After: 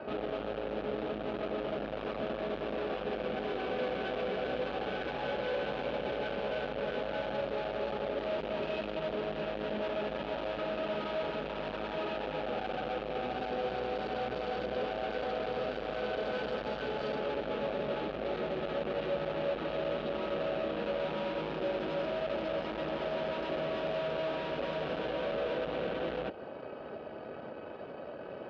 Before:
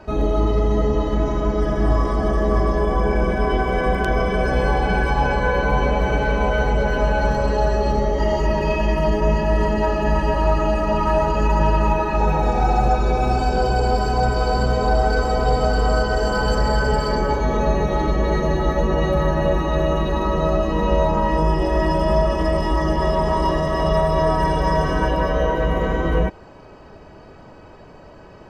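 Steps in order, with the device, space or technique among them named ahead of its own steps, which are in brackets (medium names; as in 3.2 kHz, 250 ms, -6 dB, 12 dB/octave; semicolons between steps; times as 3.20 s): 21.04–22.06 s: comb 5.5 ms, depth 59%; guitar amplifier (valve stage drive 35 dB, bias 0.7; tone controls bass -14 dB, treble -5 dB; cabinet simulation 78–3500 Hz, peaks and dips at 140 Hz +4 dB, 230 Hz +6 dB, 540 Hz +5 dB, 1 kHz -9 dB, 2 kHz -8 dB); dynamic bell 1.3 kHz, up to -4 dB, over -50 dBFS, Q 0.81; trim +5.5 dB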